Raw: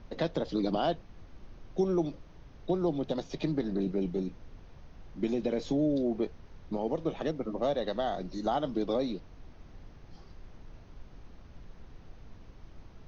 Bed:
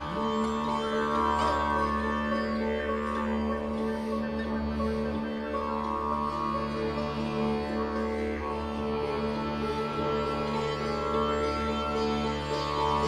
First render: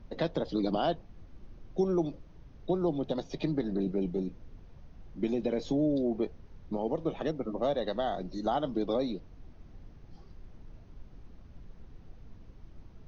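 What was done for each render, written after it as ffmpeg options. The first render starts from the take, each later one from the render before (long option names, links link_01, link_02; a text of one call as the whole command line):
ffmpeg -i in.wav -af "afftdn=noise_reduction=6:noise_floor=-53" out.wav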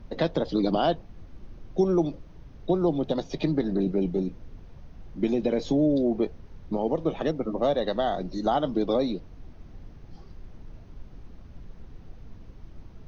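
ffmpeg -i in.wav -af "volume=5.5dB" out.wav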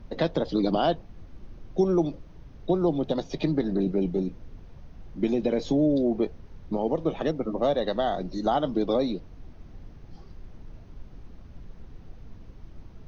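ffmpeg -i in.wav -af anull out.wav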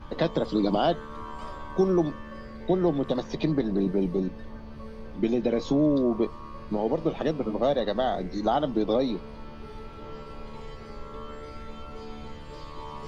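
ffmpeg -i in.wav -i bed.wav -filter_complex "[1:a]volume=-13.5dB[link_01];[0:a][link_01]amix=inputs=2:normalize=0" out.wav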